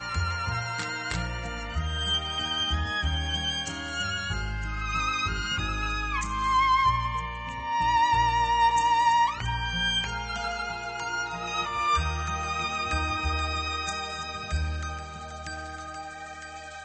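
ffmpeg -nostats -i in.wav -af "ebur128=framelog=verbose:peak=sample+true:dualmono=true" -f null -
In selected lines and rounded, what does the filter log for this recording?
Integrated loudness:
  I:         -24.3 LUFS
  Threshold: -34.6 LUFS
Loudness range:
  LRA:         5.9 LU
  Threshold: -44.1 LUFS
  LRA low:   -27.1 LUFS
  LRA high:  -21.2 LUFS
Sample peak:
  Peak:      -12.8 dBFS
True peak:
  Peak:      -12.8 dBFS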